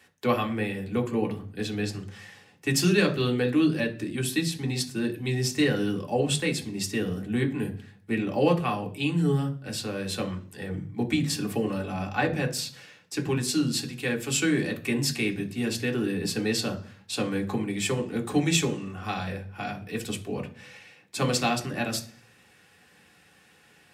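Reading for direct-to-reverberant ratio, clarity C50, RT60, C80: 2.0 dB, 14.5 dB, 0.45 s, 19.0 dB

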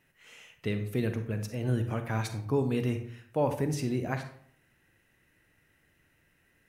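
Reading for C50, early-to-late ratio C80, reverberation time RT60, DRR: 9.0 dB, 12.5 dB, 0.60 s, 7.5 dB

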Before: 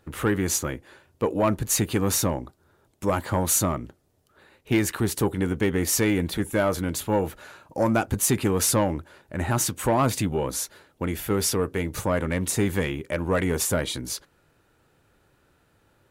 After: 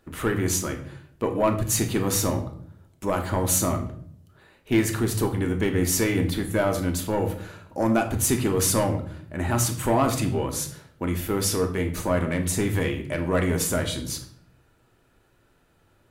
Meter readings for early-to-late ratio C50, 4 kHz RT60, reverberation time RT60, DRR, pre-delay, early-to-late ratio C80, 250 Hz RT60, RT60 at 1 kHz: 10.0 dB, 0.45 s, 0.60 s, 4.0 dB, 3 ms, 13.5 dB, 0.90 s, 0.50 s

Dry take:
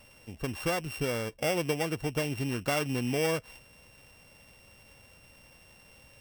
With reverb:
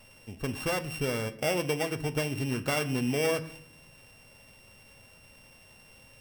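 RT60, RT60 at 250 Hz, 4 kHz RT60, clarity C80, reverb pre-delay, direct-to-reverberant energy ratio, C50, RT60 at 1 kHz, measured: 0.65 s, 1.0 s, 0.50 s, 18.5 dB, 5 ms, 9.0 dB, 16.0 dB, 0.60 s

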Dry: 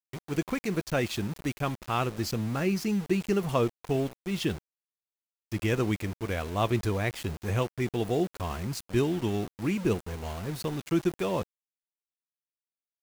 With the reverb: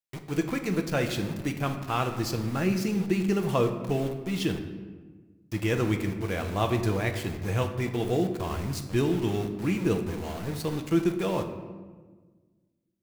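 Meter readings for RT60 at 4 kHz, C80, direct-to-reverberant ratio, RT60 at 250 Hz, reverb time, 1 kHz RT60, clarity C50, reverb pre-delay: 0.85 s, 10.5 dB, 5.0 dB, 2.0 s, 1.4 s, 1.3 s, 8.5 dB, 6 ms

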